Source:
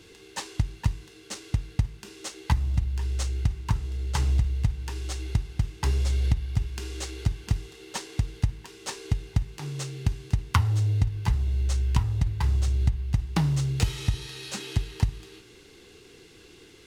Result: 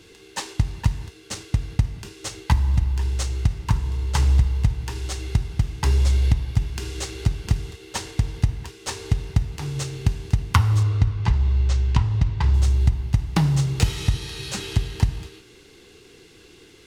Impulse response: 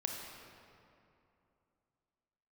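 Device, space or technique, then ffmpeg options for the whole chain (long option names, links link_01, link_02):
keyed gated reverb: -filter_complex "[0:a]asettb=1/sr,asplit=3[link_01][link_02][link_03];[link_01]atrim=end=10.834[link_04];[link_02]atrim=start=10.83:end=12.54,asetpts=PTS-STARTPTS,afade=type=in:duration=0.004:curve=qsin,afade=type=out:start_time=1.706:duration=0.004:curve=qsin,lowpass=5400[link_05];[link_03]atrim=start=12.536[link_06];[link_04][link_05]acrossfade=duration=0.004:curve1=hsin:curve2=qsin[link_07];[link_07][link_06]acrossfade=duration=0.004:curve1=qsin:curve2=hsin,asplit=3[link_08][link_09][link_10];[1:a]atrim=start_sample=2205[link_11];[link_09][link_11]afir=irnorm=-1:irlink=0[link_12];[link_10]apad=whole_len=743594[link_13];[link_12][link_13]sidechaingate=range=-33dB:threshold=-42dB:ratio=16:detection=peak,volume=-8dB[link_14];[link_08][link_14]amix=inputs=2:normalize=0,volume=2dB"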